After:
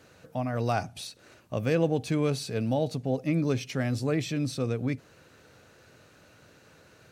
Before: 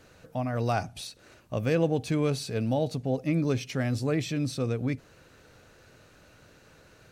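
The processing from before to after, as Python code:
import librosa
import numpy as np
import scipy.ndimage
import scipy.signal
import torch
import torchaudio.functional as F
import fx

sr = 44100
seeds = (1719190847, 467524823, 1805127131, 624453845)

y = scipy.signal.sosfilt(scipy.signal.butter(2, 80.0, 'highpass', fs=sr, output='sos'), x)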